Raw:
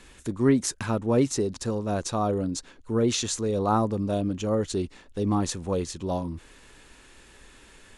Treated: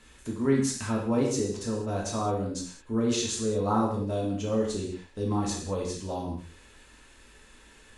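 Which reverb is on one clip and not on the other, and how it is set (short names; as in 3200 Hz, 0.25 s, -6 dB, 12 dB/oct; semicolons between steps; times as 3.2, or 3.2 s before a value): non-linear reverb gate 0.24 s falling, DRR -3 dB; gain -7 dB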